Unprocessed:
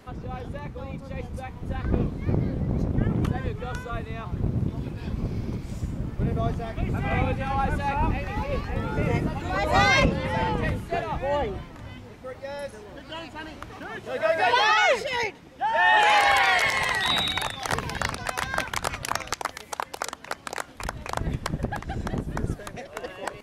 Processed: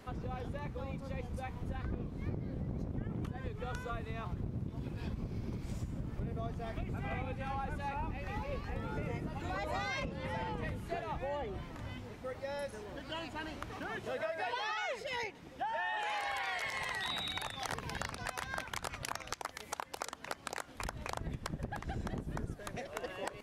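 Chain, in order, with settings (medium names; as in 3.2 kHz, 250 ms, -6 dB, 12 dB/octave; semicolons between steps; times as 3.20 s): compression 6:1, threshold -32 dBFS, peak gain reduction 16 dB; trim -3.5 dB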